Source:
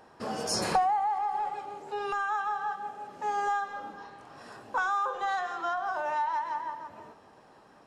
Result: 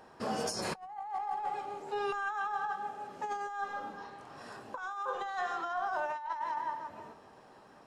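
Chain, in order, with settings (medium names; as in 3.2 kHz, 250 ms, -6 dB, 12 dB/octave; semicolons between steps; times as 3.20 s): on a send at -15 dB: reverberation RT60 0.45 s, pre-delay 4 ms; on the sum: compressor with a negative ratio -32 dBFS, ratio -0.5; trim -3 dB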